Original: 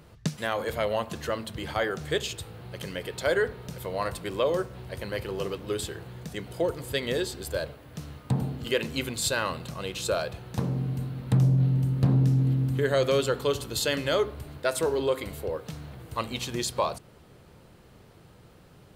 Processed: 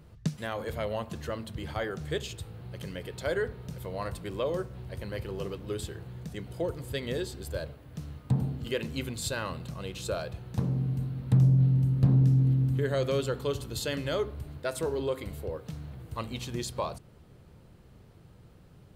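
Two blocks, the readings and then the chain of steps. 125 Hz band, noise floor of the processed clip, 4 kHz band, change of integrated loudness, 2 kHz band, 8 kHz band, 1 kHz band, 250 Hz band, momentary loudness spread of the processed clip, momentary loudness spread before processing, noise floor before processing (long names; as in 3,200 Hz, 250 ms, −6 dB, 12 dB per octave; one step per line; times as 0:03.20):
+0.5 dB, −54 dBFS, −7.0 dB, −2.5 dB, −7.0 dB, −7.0 dB, −6.5 dB, −1.5 dB, 17 LU, 13 LU, −54 dBFS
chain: low-shelf EQ 240 Hz +9.5 dB
level −7 dB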